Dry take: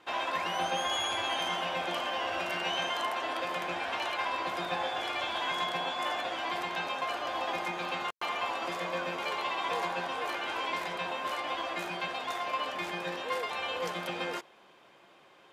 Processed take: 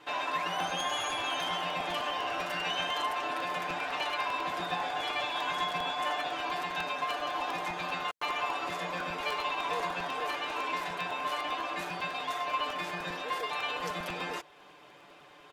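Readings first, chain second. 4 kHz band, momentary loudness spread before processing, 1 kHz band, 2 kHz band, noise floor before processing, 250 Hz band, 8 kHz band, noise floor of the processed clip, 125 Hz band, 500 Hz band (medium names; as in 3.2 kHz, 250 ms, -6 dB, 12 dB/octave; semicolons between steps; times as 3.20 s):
-0.5 dB, 4 LU, +0.5 dB, 0.0 dB, -59 dBFS, -1.0 dB, 0.0 dB, -55 dBFS, +1.0 dB, -2.0 dB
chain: comb 6.8 ms, depth 80%; in parallel at -0.5 dB: compression, threshold -46 dBFS, peak gain reduction 19.5 dB; on the sum: crackling interface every 0.10 s, samples 128, repeat, from 0.60 s; trim -3.5 dB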